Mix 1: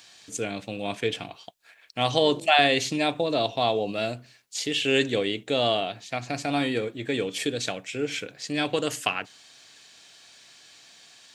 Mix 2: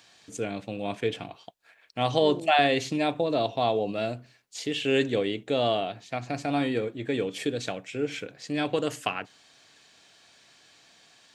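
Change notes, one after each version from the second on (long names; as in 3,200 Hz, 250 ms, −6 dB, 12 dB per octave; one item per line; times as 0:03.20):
second voice +6.0 dB
master: add high-shelf EQ 2,100 Hz −8 dB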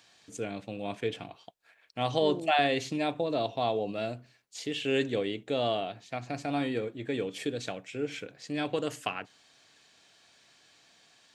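first voice −4.0 dB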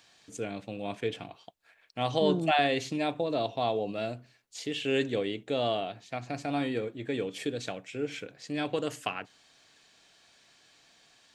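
second voice: remove resonant band-pass 520 Hz, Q 1.7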